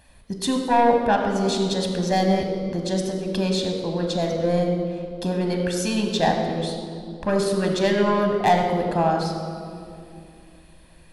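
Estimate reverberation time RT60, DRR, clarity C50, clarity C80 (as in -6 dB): 2.6 s, 3.0 dB, 4.5 dB, 5.5 dB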